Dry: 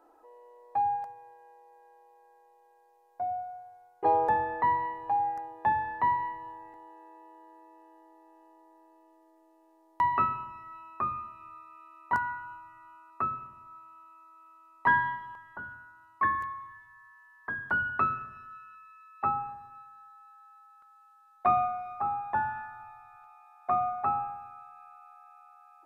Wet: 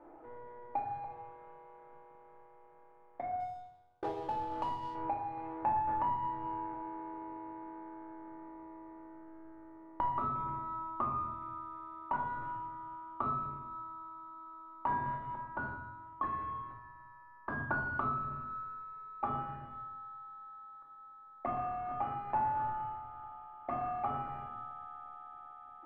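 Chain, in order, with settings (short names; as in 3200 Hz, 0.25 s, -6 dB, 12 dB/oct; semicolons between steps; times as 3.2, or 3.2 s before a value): half-waves squared off; LPF 1400 Hz 24 dB/oct; compressor 12:1, threshold -34 dBFS, peak gain reduction 16.5 dB; 3.4–4.95 power-law curve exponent 1.4; shoebox room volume 910 m³, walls furnished, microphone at 2.5 m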